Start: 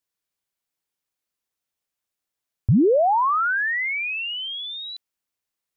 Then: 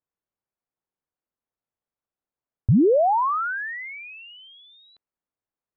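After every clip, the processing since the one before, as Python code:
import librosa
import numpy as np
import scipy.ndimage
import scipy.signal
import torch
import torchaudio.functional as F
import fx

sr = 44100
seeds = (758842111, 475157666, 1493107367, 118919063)

y = scipy.signal.sosfilt(scipy.signal.butter(2, 1200.0, 'lowpass', fs=sr, output='sos'), x)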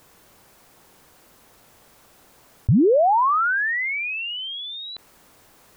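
y = fx.env_flatten(x, sr, amount_pct=50)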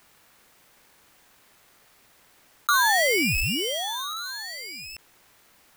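y = x * np.sign(np.sin(2.0 * np.pi * 1300.0 * np.arange(len(x)) / sr))
y = F.gain(torch.from_numpy(y), -4.5).numpy()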